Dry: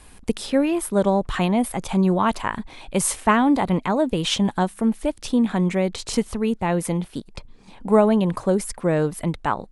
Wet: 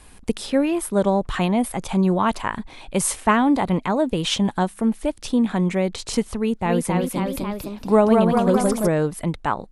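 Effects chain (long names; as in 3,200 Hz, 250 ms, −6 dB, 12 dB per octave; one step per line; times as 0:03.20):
0:06.37–0:08.88: delay with pitch and tempo change per echo 284 ms, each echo +1 semitone, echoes 3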